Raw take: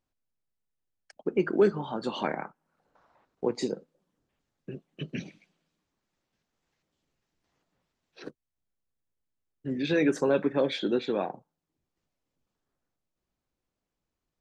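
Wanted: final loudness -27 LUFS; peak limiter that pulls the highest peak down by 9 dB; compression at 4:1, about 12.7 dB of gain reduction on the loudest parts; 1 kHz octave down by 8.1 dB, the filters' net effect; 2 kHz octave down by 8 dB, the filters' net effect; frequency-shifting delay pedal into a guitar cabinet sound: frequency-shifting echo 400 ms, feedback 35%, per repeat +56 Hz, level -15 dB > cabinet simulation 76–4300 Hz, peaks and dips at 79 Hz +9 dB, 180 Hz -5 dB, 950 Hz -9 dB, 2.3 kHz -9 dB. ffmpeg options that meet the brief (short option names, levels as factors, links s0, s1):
-filter_complex "[0:a]equalizer=f=1000:t=o:g=-5.5,equalizer=f=2000:t=o:g=-5,acompressor=threshold=0.02:ratio=4,alimiter=level_in=2.37:limit=0.0631:level=0:latency=1,volume=0.422,asplit=4[s0][s1][s2][s3];[s1]adelay=400,afreqshift=56,volume=0.178[s4];[s2]adelay=800,afreqshift=112,volume=0.0624[s5];[s3]adelay=1200,afreqshift=168,volume=0.0219[s6];[s0][s4][s5][s6]amix=inputs=4:normalize=0,highpass=76,equalizer=f=79:t=q:w=4:g=9,equalizer=f=180:t=q:w=4:g=-5,equalizer=f=950:t=q:w=4:g=-9,equalizer=f=2300:t=q:w=4:g=-9,lowpass=f=4300:w=0.5412,lowpass=f=4300:w=1.3066,volume=7.08"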